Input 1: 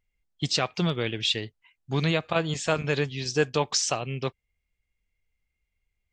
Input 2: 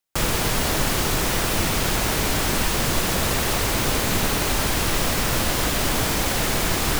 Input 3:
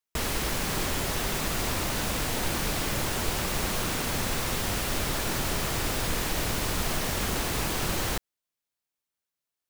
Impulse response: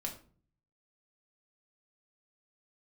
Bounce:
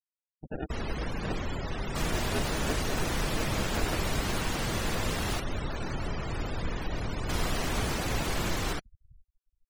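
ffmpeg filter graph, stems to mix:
-filter_complex "[0:a]lowshelf=f=490:t=q:w=1.5:g=-13,bandreject=f=7600:w=12,acrusher=samples=41:mix=1:aa=0.000001,volume=0.316[s0];[1:a]adelay=1800,volume=0.299,asplit=3[s1][s2][s3];[s1]atrim=end=5.4,asetpts=PTS-STARTPTS,afade=t=out:st=5.396:d=0.004:c=hsin[s4];[s2]atrim=start=5.4:end=7.29,asetpts=PTS-STARTPTS,volume=0[s5];[s3]atrim=start=7.29,asetpts=PTS-STARTPTS,afade=t=in:d=0.004:c=hsin[s6];[s4][s5][s6]concat=n=3:v=0:a=1,asplit=2[s7][s8];[s8]volume=0.112[s9];[2:a]lowshelf=f=200:g=5,adelay=550,volume=0.531[s10];[s9]aecho=0:1:428|856|1284|1712|2140|2568:1|0.45|0.202|0.0911|0.041|0.0185[s11];[s0][s7][s10][s11]amix=inputs=4:normalize=0,afftfilt=real='re*gte(hypot(re,im),0.0178)':imag='im*gte(hypot(re,im),0.0178)':win_size=1024:overlap=0.75"

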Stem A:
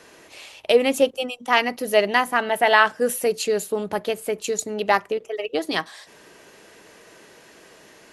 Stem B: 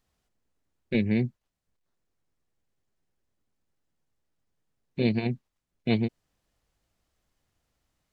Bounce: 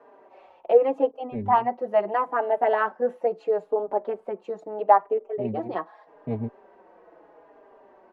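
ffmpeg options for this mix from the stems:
-filter_complex "[0:a]highpass=300,volume=0.944,asplit=2[s0][s1];[1:a]adelay=400,volume=0.794[s2];[s1]apad=whole_len=376134[s3];[s2][s3]sidechaincompress=threshold=0.0447:ratio=8:attack=6.2:release=346[s4];[s0][s4]amix=inputs=2:normalize=0,lowpass=f=850:t=q:w=2,asplit=2[s5][s6];[s6]adelay=4.5,afreqshift=-0.79[s7];[s5][s7]amix=inputs=2:normalize=1"

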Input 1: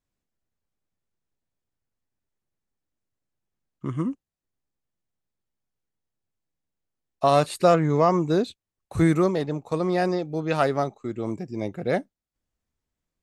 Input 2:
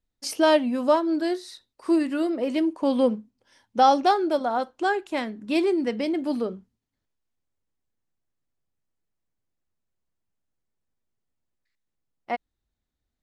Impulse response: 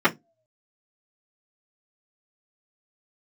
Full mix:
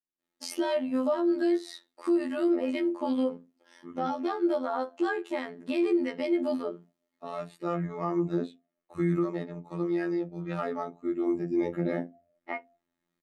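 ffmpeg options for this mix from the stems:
-filter_complex "[0:a]volume=0.501,afade=t=in:st=7.51:d=0.65:silence=0.446684,afade=t=in:st=10.9:d=0.77:silence=0.298538,asplit=3[s0][s1][s2];[s1]volume=0.376[s3];[1:a]highpass=280,acompressor=threshold=0.0178:ratio=2,adelay=200,volume=1.19,asplit=2[s4][s5];[s5]volume=0.168[s6];[s2]apad=whole_len=591850[s7];[s4][s7]sidechaincompress=threshold=0.00141:ratio=8:attack=16:release=562[s8];[2:a]atrim=start_sample=2205[s9];[s3][s6]amix=inputs=2:normalize=0[s10];[s10][s9]afir=irnorm=-1:irlink=0[s11];[s0][s8][s11]amix=inputs=3:normalize=0,afftfilt=real='hypot(re,im)*cos(PI*b)':imag='0':win_size=2048:overlap=0.75,bandreject=f=5300:w=25,alimiter=limit=0.141:level=0:latency=1:release=68"

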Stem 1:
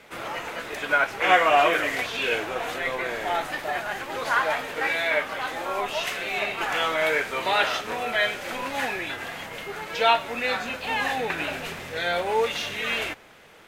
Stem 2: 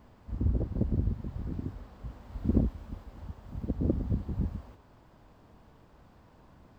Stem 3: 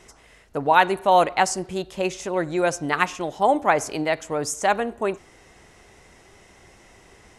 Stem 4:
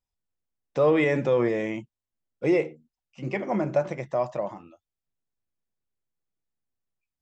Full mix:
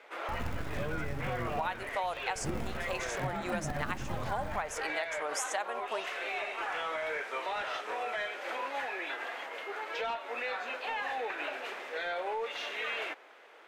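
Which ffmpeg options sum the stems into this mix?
-filter_complex "[0:a]highpass=f=310:w=0.5412,highpass=f=310:w=1.3066,asplit=2[s0][s1];[s1]highpass=f=720:p=1,volume=5.01,asoftclip=type=tanh:threshold=0.531[s2];[s0][s2]amix=inputs=2:normalize=0,lowpass=f=1300:p=1,volume=0.501,alimiter=limit=0.133:level=0:latency=1:release=241,volume=0.376[s3];[1:a]acrusher=bits=4:dc=4:mix=0:aa=0.000001,asoftclip=type=hard:threshold=0.075,volume=0.944,asplit=2[s4][s5];[s5]volume=0.631[s6];[2:a]highpass=660,adelay=900,volume=0.562[s7];[3:a]asubboost=boost=9:cutoff=170,volume=0.266[s8];[s6]aecho=0:1:63|126|189|252|315|378|441:1|0.51|0.26|0.133|0.0677|0.0345|0.0176[s9];[s3][s4][s7][s8][s9]amix=inputs=5:normalize=0,acompressor=threshold=0.0316:ratio=12"

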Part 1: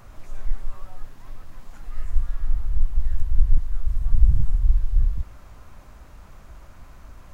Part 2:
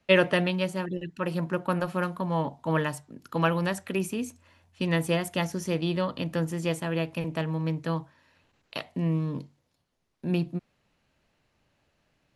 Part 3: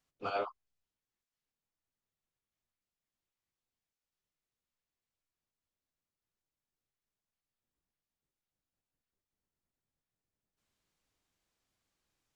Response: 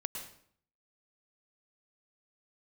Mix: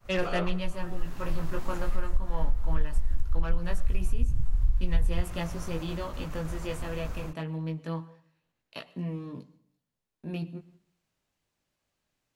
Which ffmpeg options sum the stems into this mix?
-filter_complex "[0:a]agate=range=0.0224:threshold=0.00794:ratio=3:detection=peak,dynaudnorm=f=130:g=3:m=4.22,volume=0.562[s0];[1:a]agate=range=0.398:threshold=0.00251:ratio=16:detection=peak,flanger=delay=16.5:depth=3.6:speed=0.22,asoftclip=type=tanh:threshold=0.106,volume=0.596,asplit=2[s1][s2];[s2]volume=0.2[s3];[2:a]volume=0.794,asplit=3[s4][s5][s6];[s5]volume=0.398[s7];[s6]apad=whole_len=323385[s8];[s0][s8]sidechaincompress=threshold=0.00501:ratio=8:attack=42:release=877[s9];[3:a]atrim=start_sample=2205[s10];[s3][s7]amix=inputs=2:normalize=0[s11];[s11][s10]afir=irnorm=-1:irlink=0[s12];[s9][s1][s4][s12]amix=inputs=4:normalize=0,acompressor=threshold=0.126:ratio=6"

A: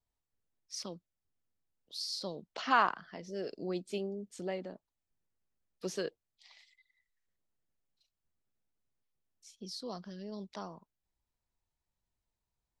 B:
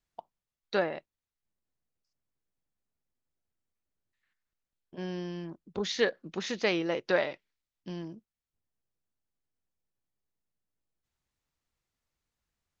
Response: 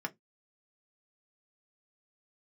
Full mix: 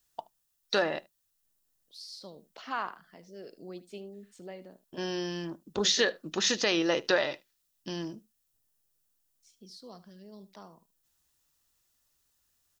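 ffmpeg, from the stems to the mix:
-filter_complex "[0:a]dynaudnorm=f=120:g=13:m=3.55,volume=0.133,asplit=2[s0][s1];[s1]volume=0.15[s2];[1:a]bandreject=f=2200:w=6.5,crystalizer=i=3.5:c=0,volume=1.33,asplit=3[s3][s4][s5];[s4]volume=0.211[s6];[s5]volume=0.0668[s7];[2:a]atrim=start_sample=2205[s8];[s6][s8]afir=irnorm=-1:irlink=0[s9];[s2][s7]amix=inputs=2:normalize=0,aecho=0:1:75:1[s10];[s0][s3][s9][s10]amix=inputs=4:normalize=0,alimiter=limit=0.2:level=0:latency=1:release=166"

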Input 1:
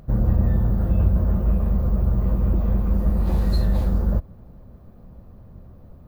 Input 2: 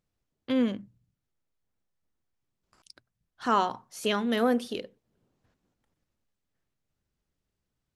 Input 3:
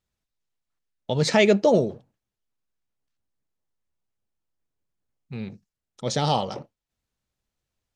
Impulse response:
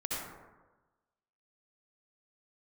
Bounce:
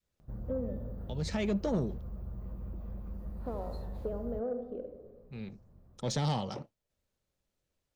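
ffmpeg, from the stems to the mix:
-filter_complex "[0:a]acompressor=threshold=0.0316:ratio=1.5,adelay=200,volume=0.158[s0];[1:a]acompressor=threshold=0.0398:ratio=5,lowpass=f=560:t=q:w=4.9,volume=0.266,asplit=3[s1][s2][s3];[s2]volume=0.376[s4];[2:a]acrossover=split=290[s5][s6];[s6]acompressor=threshold=0.0224:ratio=2[s7];[s5][s7]amix=inputs=2:normalize=0,volume=0.794[s8];[s3]apad=whole_len=350956[s9];[s8][s9]sidechaincompress=threshold=0.00224:ratio=4:attack=12:release=820[s10];[3:a]atrim=start_sample=2205[s11];[s4][s11]afir=irnorm=-1:irlink=0[s12];[s0][s1][s10][s12]amix=inputs=4:normalize=0,adynamicequalizer=threshold=0.00891:dfrequency=540:dqfactor=0.88:tfrequency=540:tqfactor=0.88:attack=5:release=100:ratio=0.375:range=2:mode=cutabove:tftype=bell,asoftclip=type=tanh:threshold=0.0668"

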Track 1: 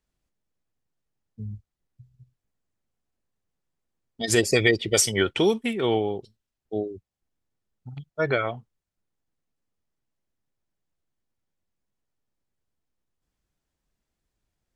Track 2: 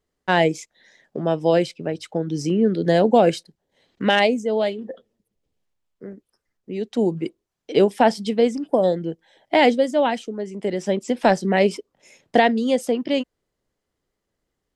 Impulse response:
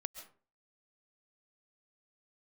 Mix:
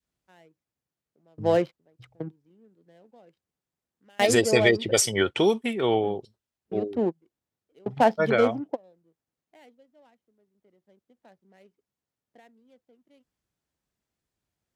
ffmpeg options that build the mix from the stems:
-filter_complex "[0:a]volume=0.794,asplit=2[s0][s1];[1:a]equalizer=f=4400:t=o:w=1.6:g=2.5,adynamicsmooth=sensitivity=2.5:basefreq=690,volume=0.473[s2];[s1]apad=whole_len=650542[s3];[s2][s3]sidechaingate=range=0.0224:threshold=0.00158:ratio=16:detection=peak[s4];[s0][s4]amix=inputs=2:normalize=0,highpass=73,adynamicequalizer=threshold=0.0178:dfrequency=730:dqfactor=0.83:tfrequency=730:tqfactor=0.83:attack=5:release=100:ratio=0.375:range=2:mode=boostabove:tftype=bell"

